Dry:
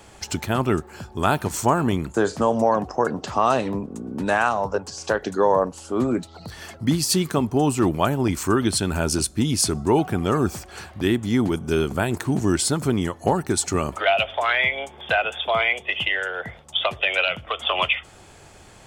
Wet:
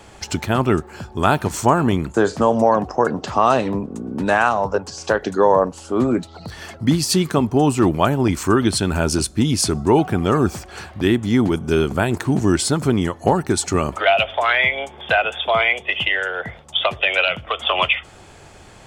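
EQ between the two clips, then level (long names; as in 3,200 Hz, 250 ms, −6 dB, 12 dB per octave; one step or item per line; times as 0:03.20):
high-shelf EQ 7,900 Hz −7 dB
+4.0 dB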